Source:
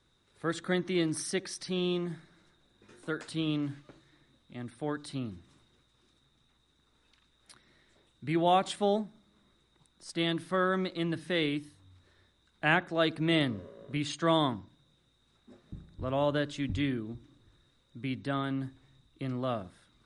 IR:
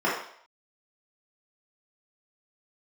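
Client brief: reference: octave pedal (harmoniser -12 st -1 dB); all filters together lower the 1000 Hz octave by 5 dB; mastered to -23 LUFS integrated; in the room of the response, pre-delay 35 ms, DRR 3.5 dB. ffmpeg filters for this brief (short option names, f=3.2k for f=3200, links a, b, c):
-filter_complex "[0:a]equalizer=f=1k:t=o:g=-7.5,asplit=2[a][b];[1:a]atrim=start_sample=2205,adelay=35[c];[b][c]afir=irnorm=-1:irlink=0,volume=-19dB[d];[a][d]amix=inputs=2:normalize=0,asplit=2[e][f];[f]asetrate=22050,aresample=44100,atempo=2,volume=-1dB[g];[e][g]amix=inputs=2:normalize=0,volume=6.5dB"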